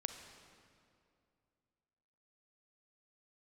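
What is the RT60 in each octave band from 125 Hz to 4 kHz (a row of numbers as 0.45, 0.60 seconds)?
2.9, 2.8, 2.6, 2.4, 2.0, 1.7 seconds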